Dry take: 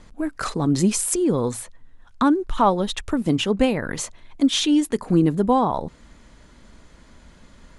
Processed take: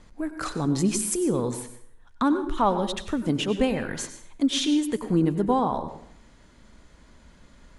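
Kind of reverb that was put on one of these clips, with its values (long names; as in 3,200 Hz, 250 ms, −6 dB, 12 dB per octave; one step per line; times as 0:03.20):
dense smooth reverb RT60 0.62 s, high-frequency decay 0.75×, pre-delay 80 ms, DRR 9 dB
level −4.5 dB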